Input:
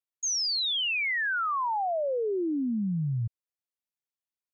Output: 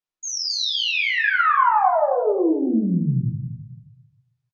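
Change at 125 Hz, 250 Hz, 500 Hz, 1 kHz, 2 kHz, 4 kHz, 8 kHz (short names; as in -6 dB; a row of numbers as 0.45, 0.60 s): +7.5 dB, +8.5 dB, +8.5 dB, +11.5 dB, +8.0 dB, +5.0 dB, n/a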